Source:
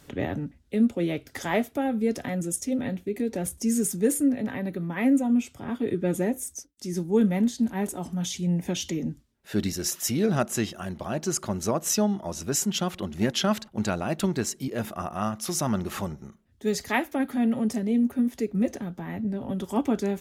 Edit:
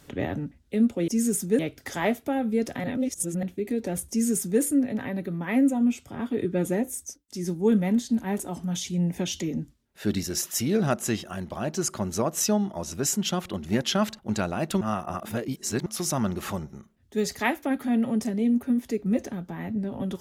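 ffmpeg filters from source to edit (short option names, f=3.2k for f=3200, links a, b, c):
-filter_complex "[0:a]asplit=7[a][b][c][d][e][f][g];[a]atrim=end=1.082[h];[b]atrim=start=3.588:end=4.102[i];[c]atrim=start=1.078:end=2.332[j];[d]atrim=start=2.328:end=2.922,asetpts=PTS-STARTPTS,areverse[k];[e]atrim=start=2.918:end=14.302[l];[f]atrim=start=14.298:end=15.352,asetpts=PTS-STARTPTS,areverse[m];[g]atrim=start=15.348[n];[h][i]acrossfade=d=0.004:c1=hsin:c2=hsin[o];[o][j]acrossfade=d=0.004:c1=hsin:c2=hsin[p];[p][k]acrossfade=d=0.004:c1=hsin:c2=hsin[q];[q][l]acrossfade=d=0.004:c1=hsin:c2=hsin[r];[r][m]acrossfade=d=0.004:c1=hsin:c2=hsin[s];[s][n]acrossfade=d=0.004:c1=hsin:c2=hsin"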